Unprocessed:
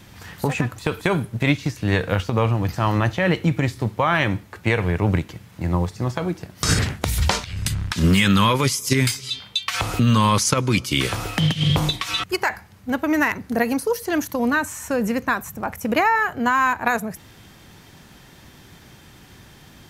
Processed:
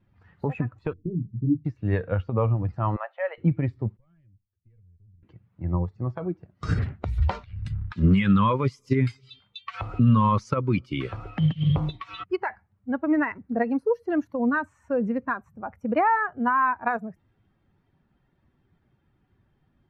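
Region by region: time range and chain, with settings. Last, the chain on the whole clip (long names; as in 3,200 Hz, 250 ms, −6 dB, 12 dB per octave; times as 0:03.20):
0:00.93–0:01.65: inverse Chebyshev band-stop filter 1,300–8,300 Hz, stop band 70 dB + mains-hum notches 50/100/150/200 Hz + double-tracking delay 24 ms −7 dB
0:02.96–0:03.38: Butterworth high-pass 540 Hz + high-frequency loss of the air 160 metres
0:03.97–0:05.23: tube saturation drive 9 dB, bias 0.6 + guitar amp tone stack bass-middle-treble 10-0-1 + downward compressor 4 to 1, threshold −40 dBFS
whole clip: spectral dynamics exaggerated over time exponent 1.5; low-pass filter 1,400 Hz 12 dB per octave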